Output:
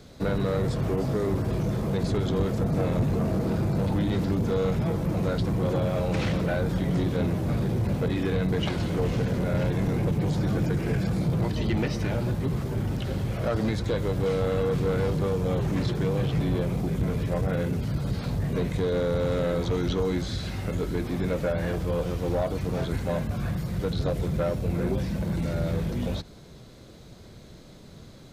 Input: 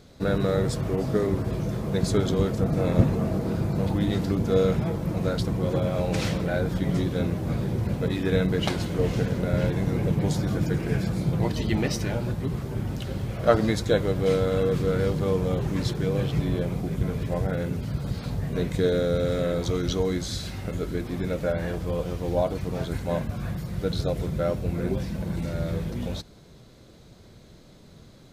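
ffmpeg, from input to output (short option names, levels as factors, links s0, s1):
-filter_complex "[0:a]acrossover=split=3600[s0][s1];[s1]acompressor=threshold=0.00398:ratio=4:attack=1:release=60[s2];[s0][s2]amix=inputs=2:normalize=0,acrossover=split=130|3600[s3][s4][s5];[s4]alimiter=limit=0.126:level=0:latency=1:release=195[s6];[s3][s6][s5]amix=inputs=3:normalize=0,asoftclip=type=tanh:threshold=0.0794,volume=1.41"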